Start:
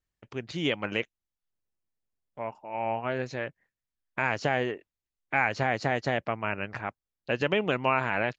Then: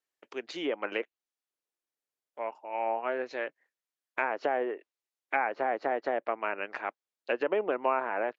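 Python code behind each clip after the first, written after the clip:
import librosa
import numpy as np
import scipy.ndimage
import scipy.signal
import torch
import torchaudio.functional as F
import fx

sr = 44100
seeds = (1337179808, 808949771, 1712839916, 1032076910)

y = fx.env_lowpass_down(x, sr, base_hz=1200.0, full_db=-24.0)
y = scipy.signal.sosfilt(scipy.signal.butter(4, 320.0, 'highpass', fs=sr, output='sos'), y)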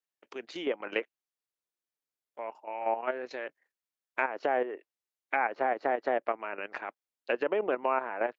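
y = fx.level_steps(x, sr, step_db=10)
y = F.gain(torch.from_numpy(y), 3.0).numpy()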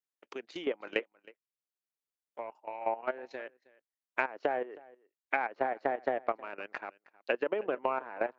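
y = fx.transient(x, sr, attack_db=7, sustain_db=-3)
y = y + 10.0 ** (-22.5 / 20.0) * np.pad(y, (int(316 * sr / 1000.0), 0))[:len(y)]
y = F.gain(torch.from_numpy(y), -6.0).numpy()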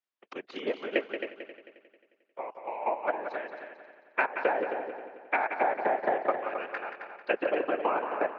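y = fx.whisperise(x, sr, seeds[0])
y = fx.bandpass_edges(y, sr, low_hz=280.0, high_hz=3800.0)
y = fx.echo_heads(y, sr, ms=89, heads='second and third', feedback_pct=42, wet_db=-8.5)
y = F.gain(torch.from_numpy(y), 3.5).numpy()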